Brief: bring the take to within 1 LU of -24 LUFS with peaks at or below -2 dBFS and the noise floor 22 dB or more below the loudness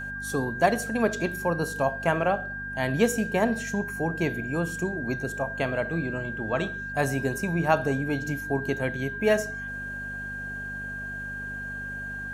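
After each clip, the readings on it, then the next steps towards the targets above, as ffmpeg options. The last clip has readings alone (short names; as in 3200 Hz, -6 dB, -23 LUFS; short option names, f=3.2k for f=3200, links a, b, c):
hum 50 Hz; harmonics up to 250 Hz; hum level -39 dBFS; steady tone 1600 Hz; tone level -33 dBFS; loudness -28.0 LUFS; peak -7.5 dBFS; loudness target -24.0 LUFS
-> -af "bandreject=f=50:t=h:w=4,bandreject=f=100:t=h:w=4,bandreject=f=150:t=h:w=4,bandreject=f=200:t=h:w=4,bandreject=f=250:t=h:w=4"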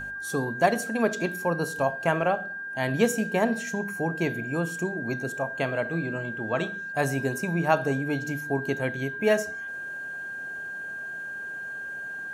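hum none; steady tone 1600 Hz; tone level -33 dBFS
-> -af "bandreject=f=1.6k:w=30"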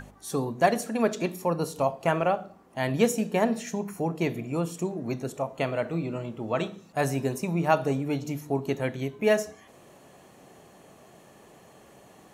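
steady tone none; loudness -28.0 LUFS; peak -8.0 dBFS; loudness target -24.0 LUFS
-> -af "volume=4dB"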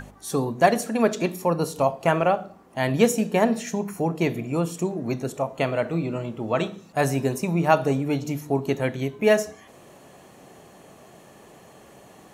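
loudness -24.0 LUFS; peak -4.0 dBFS; noise floor -50 dBFS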